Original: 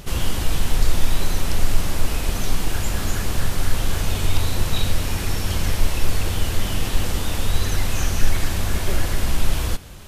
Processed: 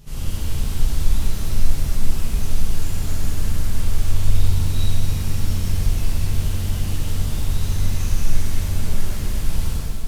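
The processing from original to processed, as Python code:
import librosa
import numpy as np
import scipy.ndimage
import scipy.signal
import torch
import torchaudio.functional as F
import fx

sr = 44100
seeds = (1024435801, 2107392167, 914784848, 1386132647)

y = fx.bass_treble(x, sr, bass_db=9, treble_db=5)
y = fx.rev_shimmer(y, sr, seeds[0], rt60_s=2.4, semitones=7, shimmer_db=-8, drr_db=-8.0)
y = y * 10.0 ** (-17.5 / 20.0)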